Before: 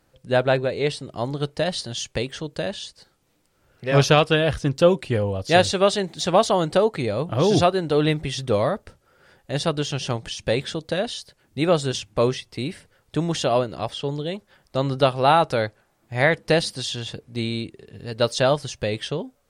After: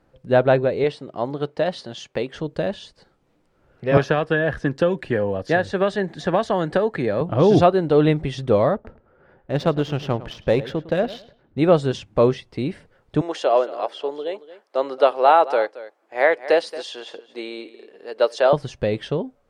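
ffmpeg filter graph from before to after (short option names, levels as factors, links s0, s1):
-filter_complex "[0:a]asettb=1/sr,asplit=3[s0][s1][s2];[s0]atrim=end=0.844[s3];[s1]atrim=start=0.84:end=2.34,asetpts=PTS-STARTPTS,afade=t=in:d=0.004:c=qsin,afade=t=out:st=1.496:d=0.004:c=qsin,highpass=f=290:p=1,highshelf=f=8200:g=-7.5[s4];[s2]atrim=start=2.336[s5];[s3][s4]acrossfade=d=0.004:c1=hsin:c2=qsin[s6];[s6][s5]acrossfade=d=0.004:c1=qsin:c2=hsin,asettb=1/sr,asplit=3[s7][s8][s9];[s7]atrim=end=3.974[s10];[s8]atrim=start=3.97:end=7.21,asetpts=PTS-STARTPTS,afade=t=in:d=0.004:c=qsin,afade=t=out:st=3.236:d=0.004:c=qsin,equalizer=f=1700:t=o:w=0.24:g=13.5,acrossover=split=170|1600[s11][s12][s13];[s11]acompressor=threshold=0.0158:ratio=4[s14];[s12]acompressor=threshold=0.0891:ratio=4[s15];[s13]acompressor=threshold=0.0316:ratio=4[s16];[s14][s15][s16]amix=inputs=3:normalize=0[s17];[s9]atrim=start=7.206[s18];[s10][s17]acrossfade=d=0.004:c1=hsin:c2=qsin[s19];[s19][s18]acrossfade=d=0.004:c1=qsin:c2=hsin,asettb=1/sr,asplit=3[s20][s21][s22];[s20]atrim=end=8.744[s23];[s21]atrim=start=8.74:end=11.59,asetpts=PTS-STARTPTS,afade=t=in:d=0.004:c=qsin,afade=t=out:st=2.846:d=0.004:c=qsin,adynamicsmooth=sensitivity=5.5:basefreq=2100,asplit=2[s24][s25];[s25]adelay=106,lowpass=f=4000:p=1,volume=0.158,asplit=2[s26][s27];[s27]adelay=106,lowpass=f=4000:p=1,volume=0.26,asplit=2[s28][s29];[s29]adelay=106,lowpass=f=4000:p=1,volume=0.26[s30];[s24][s26][s28][s30]amix=inputs=4:normalize=0,atrim=end_sample=125685[s31];[s22]atrim=start=11.586[s32];[s23][s31]acrossfade=d=0.004:c1=hsin:c2=qsin[s33];[s33][s32]acrossfade=d=0.004:c1=qsin:c2=hsin,asettb=1/sr,asplit=3[s34][s35][s36];[s34]atrim=end=13.214[s37];[s35]atrim=start=13.21:end=18.53,asetpts=PTS-STARTPTS,afade=t=in:d=0.004:c=qsin,afade=t=out:st=5.316:d=0.004:c=qsin,highpass=f=390:w=0.5412,highpass=f=390:w=1.3066,bandreject=f=3700:w=24,aecho=1:1:226:0.158,atrim=end_sample=234612[s38];[s36]atrim=start=18.526[s39];[s37][s38]acrossfade=d=0.004:c1=hsin:c2=qsin[s40];[s40][s39]acrossfade=d=0.004:c1=qsin:c2=hsin,lowpass=f=1100:p=1,equalizer=f=93:w=1.1:g=-4.5,volume=1.78"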